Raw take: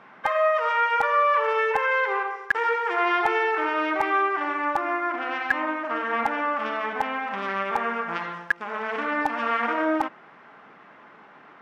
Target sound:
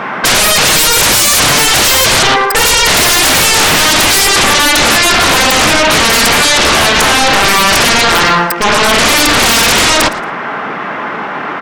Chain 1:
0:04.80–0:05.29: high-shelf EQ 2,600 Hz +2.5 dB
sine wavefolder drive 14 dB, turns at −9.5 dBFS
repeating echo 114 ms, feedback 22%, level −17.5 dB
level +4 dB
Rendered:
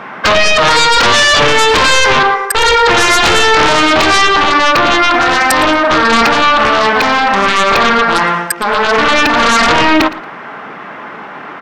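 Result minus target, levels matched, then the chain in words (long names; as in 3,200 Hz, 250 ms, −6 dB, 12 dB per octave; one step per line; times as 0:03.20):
sine wavefolder: distortion −19 dB
0:04.80–0:05.29: high-shelf EQ 2,600 Hz +2.5 dB
sine wavefolder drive 23 dB, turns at −9.5 dBFS
repeating echo 114 ms, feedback 22%, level −17.5 dB
level +4 dB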